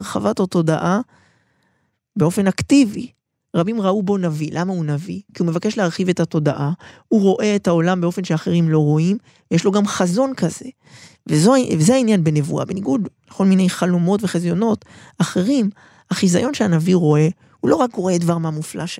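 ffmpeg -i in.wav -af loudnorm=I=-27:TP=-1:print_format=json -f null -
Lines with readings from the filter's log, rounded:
"input_i" : "-18.1",
"input_tp" : "-1.8",
"input_lra" : "2.6",
"input_thresh" : "-28.5",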